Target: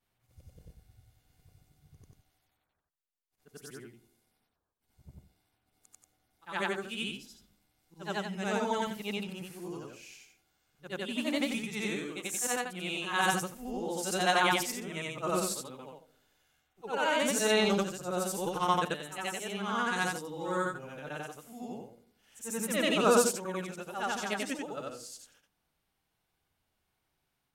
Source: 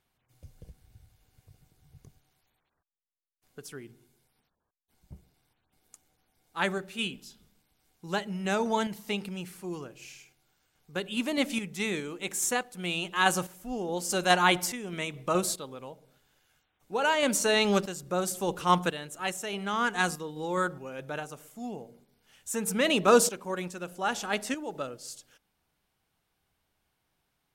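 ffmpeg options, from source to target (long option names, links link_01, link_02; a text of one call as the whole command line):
ffmpeg -i in.wav -af "afftfilt=real='re':imag='-im':win_size=8192:overlap=0.75,volume=1.5dB" out.wav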